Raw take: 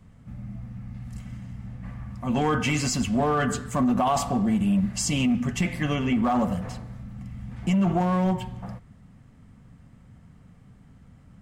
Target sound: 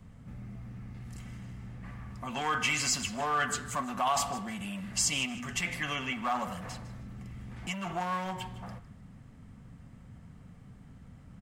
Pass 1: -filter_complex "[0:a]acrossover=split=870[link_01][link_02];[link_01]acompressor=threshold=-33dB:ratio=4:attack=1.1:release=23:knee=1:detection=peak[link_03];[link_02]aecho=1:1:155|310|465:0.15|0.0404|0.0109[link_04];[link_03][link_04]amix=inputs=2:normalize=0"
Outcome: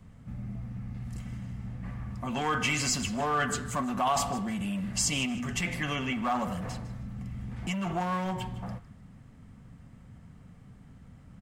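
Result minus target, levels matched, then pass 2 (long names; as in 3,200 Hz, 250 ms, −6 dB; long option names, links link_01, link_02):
downward compressor: peak gain reduction −7 dB
-filter_complex "[0:a]acrossover=split=870[link_01][link_02];[link_01]acompressor=threshold=-42dB:ratio=4:attack=1.1:release=23:knee=1:detection=peak[link_03];[link_02]aecho=1:1:155|310|465:0.15|0.0404|0.0109[link_04];[link_03][link_04]amix=inputs=2:normalize=0"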